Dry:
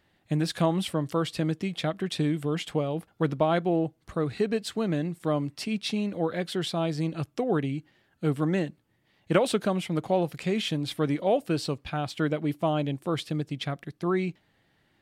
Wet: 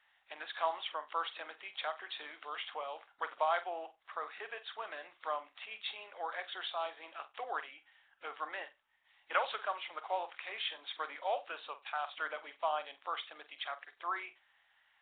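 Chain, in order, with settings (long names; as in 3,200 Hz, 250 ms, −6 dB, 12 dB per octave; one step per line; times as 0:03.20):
high-pass filter 860 Hz 24 dB per octave
dynamic equaliser 2,800 Hz, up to −6 dB, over −50 dBFS, Q 0.92
flutter between parallel walls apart 7.9 metres, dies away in 0.22 s
level +1 dB
Nellymoser 16 kbit/s 8,000 Hz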